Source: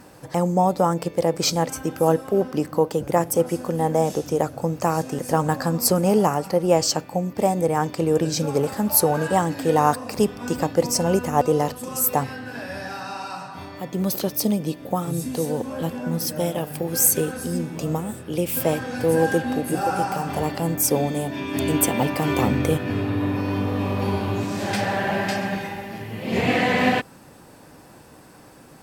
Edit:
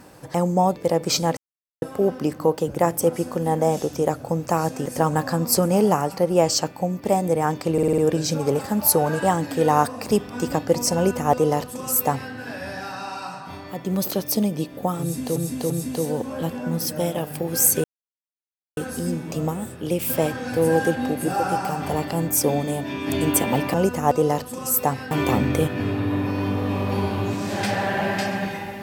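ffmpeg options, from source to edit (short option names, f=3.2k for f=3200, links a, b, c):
-filter_complex "[0:a]asplit=14[a][b][c][d][e][f][g][h][i][j][k][l][m][n];[a]atrim=end=0.762[o];[b]atrim=start=1.088:end=1.7,asetpts=PTS-STARTPTS,afade=t=out:st=0.608:d=0.004:c=hsin[p];[c]atrim=start=1.7:end=2.15,asetpts=PTS-STARTPTS,volume=0[q];[d]atrim=start=2.15:end=8.112,asetpts=PTS-STARTPTS,afade=t=in:d=0.004:c=hsin[r];[e]atrim=start=8.058:end=8.112[s];[f]atrim=start=8.058:end=8.112[t];[g]atrim=start=8.058:end=8.112[u];[h]atrim=start=8.058:end=8.112[v];[i]atrim=start=8.058:end=15.442[w];[j]atrim=start=15.098:end=15.442[x];[k]atrim=start=15.098:end=17.24,asetpts=PTS-STARTPTS,afade=t=out:st=2.138:d=0.004:c=hsin,apad=pad_dur=0.93[y];[l]atrim=start=17.24:end=22.212,asetpts=PTS-STARTPTS,afade=t=in:d=0.004:c=hsin[z];[m]atrim=start=11.038:end=12.412[aa];[n]atrim=start=22.208[ab];[p][q][r]concat=n=3:v=0:a=1[ac];[o][ac]acrossfade=d=0.004:c1=hsin:c2=hsin[ad];[ad][s]acrossfade=d=0.004:c1=hsin:c2=hsin[ae];[ae][t]acrossfade=d=0.004:c1=hsin:c2=hsin[af];[af][u]acrossfade=d=0.004:c1=hsin:c2=hsin[ag];[ag][v]acrossfade=d=0.004:c1=hsin:c2=hsin[ah];[ah][w]acrossfade=d=0.004:c1=hsin:c2=hsin[ai];[ai][x]acrossfade=d=0.004:c1=hsin:c2=hsin[aj];[y][z]concat=n=2:v=0:a=1[ak];[aj][ak]acrossfade=d=0.004:c1=hsin:c2=hsin[al];[al][aa]acrossfade=d=0.004:c1=hsin:c2=hsin[am];[am][ab]acrossfade=d=0.004:c1=hsin:c2=hsin"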